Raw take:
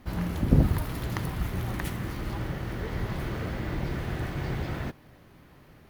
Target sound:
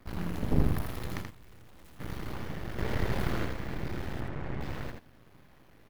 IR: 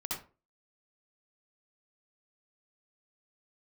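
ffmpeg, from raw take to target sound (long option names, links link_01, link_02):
-filter_complex "[0:a]asplit=3[link_01][link_02][link_03];[link_01]afade=type=out:start_time=1.21:duration=0.02[link_04];[link_02]aeval=exprs='(tanh(178*val(0)+0.3)-tanh(0.3))/178':channel_layout=same,afade=type=in:start_time=1.21:duration=0.02,afade=type=out:start_time=1.99:duration=0.02[link_05];[link_03]afade=type=in:start_time=1.99:duration=0.02[link_06];[link_04][link_05][link_06]amix=inputs=3:normalize=0,asettb=1/sr,asplit=3[link_07][link_08][link_09];[link_07]atrim=end=2.784[link_10];[link_08]atrim=start=2.78:end=3.45,asetpts=PTS-STARTPTS,afade=type=in:duration=0.004:curve=qsin,afade=type=out:start_time=0.666:duration=0.004:curve=qsin,acontrast=54[link_11];[link_09]atrim=start=3.446[link_12];[link_10][link_11]acrossfade=duration=0.004:curve1=hsin:curve2=qsin[link_13];[link_13][link_12]acrossfade=duration=0.004:curve1=qsin:curve2=hsin,asettb=1/sr,asplit=3[link_14][link_15][link_16];[link_14]atrim=end=4.204[link_17];[link_15]atrim=start=4.2:end=4.61,asetpts=PTS-STARTPTS,afade=type=in:duration=0.004:curve=qsin,afade=type=out:start_time=0.406:duration=0.004:curve=qsin,lowpass=2000[link_18];[link_16]atrim=start=4.606[link_19];[link_17][link_18]acrossfade=duration=0.004:curve1=hsin:curve2=qsin[link_20];[link_20][link_19]acrossfade=duration=0.004:curve1=qsin:curve2=hsin,aeval=exprs='max(val(0),0)':channel_layout=same,aecho=1:1:81:0.562,volume=-2dB"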